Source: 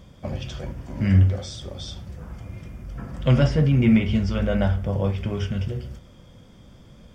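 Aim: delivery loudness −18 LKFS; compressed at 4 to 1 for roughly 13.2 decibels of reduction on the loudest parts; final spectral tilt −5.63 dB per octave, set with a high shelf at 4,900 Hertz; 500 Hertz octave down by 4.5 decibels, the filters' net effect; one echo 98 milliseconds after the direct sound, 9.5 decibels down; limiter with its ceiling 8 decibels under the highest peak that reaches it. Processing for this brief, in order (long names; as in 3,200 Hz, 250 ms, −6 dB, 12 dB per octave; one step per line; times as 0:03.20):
parametric band 500 Hz −5.5 dB
high-shelf EQ 4,900 Hz +9 dB
downward compressor 4 to 1, threshold −29 dBFS
brickwall limiter −24.5 dBFS
single-tap delay 98 ms −9.5 dB
level +16.5 dB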